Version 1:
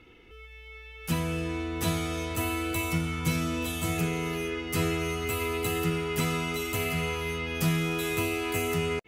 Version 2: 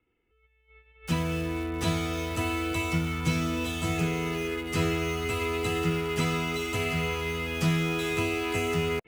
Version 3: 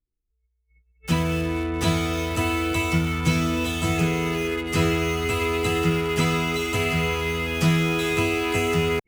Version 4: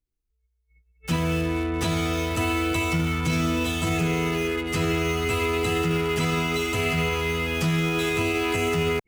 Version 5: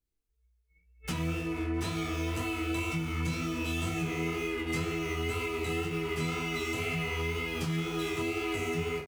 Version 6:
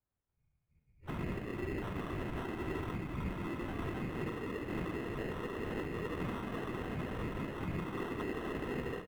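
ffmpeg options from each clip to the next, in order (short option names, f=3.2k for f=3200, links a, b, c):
-filter_complex "[0:a]lowpass=7.1k,agate=range=-21dB:threshold=-43dB:ratio=16:detection=peak,acrossover=split=200|1000|3200[a][b][c][d];[d]acrusher=bits=7:mix=0:aa=0.000001[e];[a][b][c][e]amix=inputs=4:normalize=0,volume=1dB"
-af "anlmdn=0.0631,volume=5.5dB"
-af "alimiter=limit=-15.5dB:level=0:latency=1:release=10"
-af "aecho=1:1:13|46:0.355|0.376,acompressor=threshold=-29dB:ratio=6,flanger=delay=18.5:depth=6.2:speed=2,volume=1.5dB"
-af "afftfilt=real='hypot(re,im)*cos(2*PI*random(0))':imag='hypot(re,im)*sin(2*PI*random(1))':win_size=512:overlap=0.75,acrusher=samples=19:mix=1:aa=0.000001,highshelf=f=3.5k:t=q:w=1.5:g=-11"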